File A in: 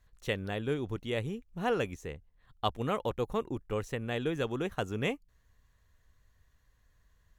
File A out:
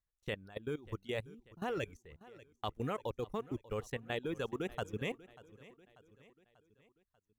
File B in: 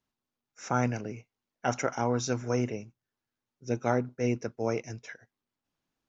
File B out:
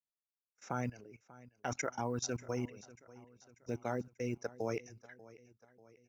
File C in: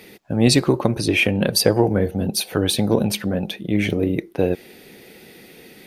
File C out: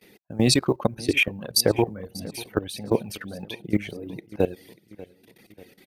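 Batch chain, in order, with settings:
companded quantiser 8-bit; reverb removal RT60 1.4 s; gate -47 dBFS, range -18 dB; level held to a coarse grid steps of 18 dB; feedback delay 590 ms, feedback 51%, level -19.5 dB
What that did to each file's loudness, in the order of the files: -6.0 LU, -8.5 LU, -5.0 LU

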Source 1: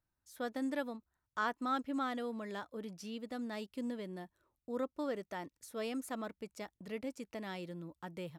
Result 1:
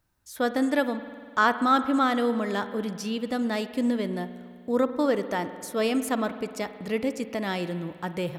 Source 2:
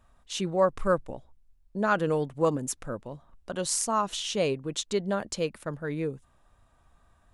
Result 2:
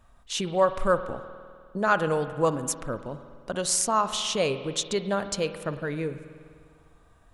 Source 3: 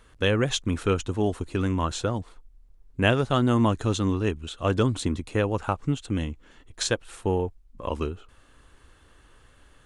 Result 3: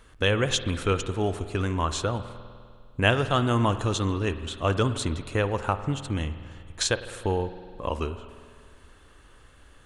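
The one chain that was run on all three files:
dynamic bell 240 Hz, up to -6 dB, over -35 dBFS, Q 0.72; spring tank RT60 2.1 s, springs 50 ms, chirp 20 ms, DRR 11 dB; normalise loudness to -27 LUFS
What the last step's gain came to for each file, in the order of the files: +13.5 dB, +3.5 dB, +2.0 dB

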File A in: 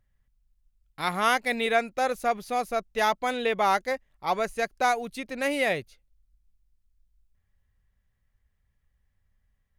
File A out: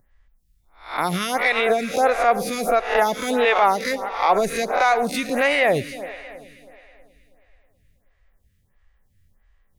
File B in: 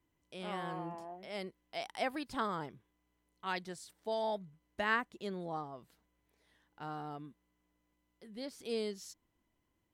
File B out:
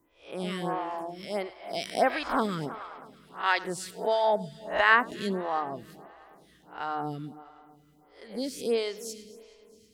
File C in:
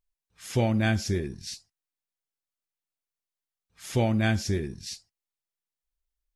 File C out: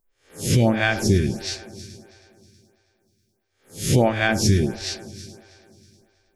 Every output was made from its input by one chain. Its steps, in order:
reverse spectral sustain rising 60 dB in 0.40 s; multi-head delay 107 ms, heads first and third, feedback 58%, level -19 dB; peak limiter -18.5 dBFS; lamp-driven phase shifter 1.5 Hz; peak normalisation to -6 dBFS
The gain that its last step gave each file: +12.0 dB, +12.0 dB, +12.0 dB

